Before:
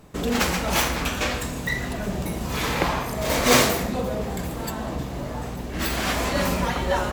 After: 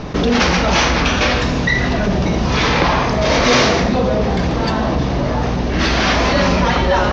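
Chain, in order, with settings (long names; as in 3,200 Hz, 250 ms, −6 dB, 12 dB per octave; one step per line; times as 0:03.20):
soft clipping −13.5 dBFS, distortion −16 dB
Butterworth low-pass 6,100 Hz 72 dB per octave
envelope flattener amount 50%
level +7 dB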